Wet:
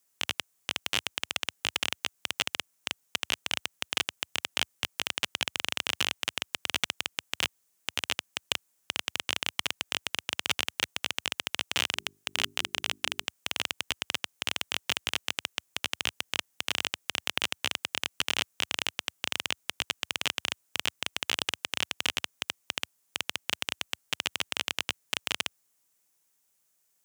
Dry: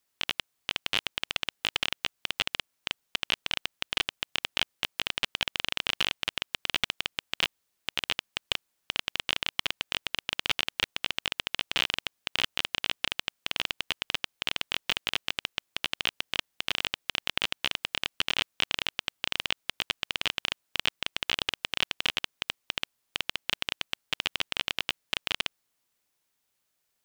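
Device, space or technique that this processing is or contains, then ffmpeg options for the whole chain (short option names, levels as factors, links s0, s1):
budget condenser microphone: -filter_complex "[0:a]asplit=3[s0][s1][s2];[s0]afade=t=out:st=11.95:d=0.02[s3];[s1]bandreject=f=50:t=h:w=6,bandreject=f=100:t=h:w=6,bandreject=f=150:t=h:w=6,bandreject=f=200:t=h:w=6,bandreject=f=250:t=h:w=6,bandreject=f=300:t=h:w=6,bandreject=f=350:t=h:w=6,bandreject=f=400:t=h:w=6,afade=t=in:st=11.95:d=0.02,afade=t=out:st=13.24:d=0.02[s4];[s2]afade=t=in:st=13.24:d=0.02[s5];[s3][s4][s5]amix=inputs=3:normalize=0,highpass=f=80:w=0.5412,highpass=f=80:w=1.3066,highshelf=f=5300:t=q:w=1.5:g=6"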